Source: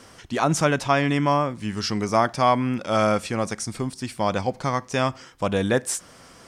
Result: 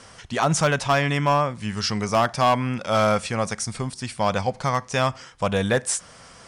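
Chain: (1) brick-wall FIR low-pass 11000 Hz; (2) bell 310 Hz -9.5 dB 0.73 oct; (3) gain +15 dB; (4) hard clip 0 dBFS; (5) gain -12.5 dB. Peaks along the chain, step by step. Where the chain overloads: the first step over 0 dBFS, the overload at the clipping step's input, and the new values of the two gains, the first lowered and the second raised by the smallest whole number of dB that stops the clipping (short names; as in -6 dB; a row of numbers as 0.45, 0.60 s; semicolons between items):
-6.5, -7.0, +8.0, 0.0, -12.5 dBFS; step 3, 8.0 dB; step 3 +7 dB, step 5 -4.5 dB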